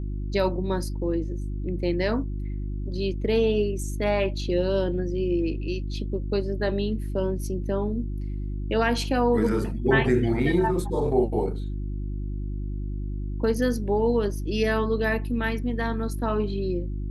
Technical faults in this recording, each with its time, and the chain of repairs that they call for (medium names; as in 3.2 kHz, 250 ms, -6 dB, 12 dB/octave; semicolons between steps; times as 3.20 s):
hum 50 Hz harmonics 7 -30 dBFS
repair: de-hum 50 Hz, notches 7